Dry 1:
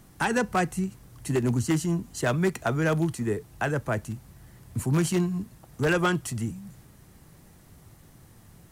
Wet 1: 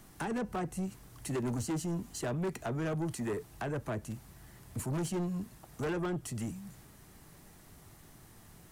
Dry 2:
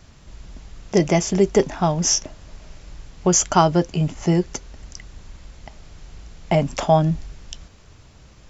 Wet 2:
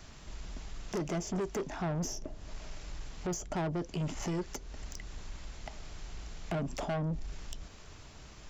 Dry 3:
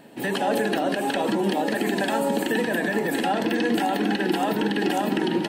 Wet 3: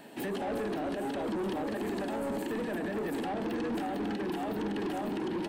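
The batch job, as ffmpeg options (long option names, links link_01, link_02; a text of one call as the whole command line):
ffmpeg -i in.wav -filter_complex "[0:a]equalizer=frequency=100:width_type=o:width=2.6:gain=-6,bandreject=frequency=520:width=12,acrossover=split=610[link_01][link_02];[link_01]alimiter=limit=-18.5dB:level=0:latency=1:release=403[link_03];[link_02]acompressor=threshold=-38dB:ratio=12[link_04];[link_03][link_04]amix=inputs=2:normalize=0,asoftclip=type=tanh:threshold=-30dB" out.wav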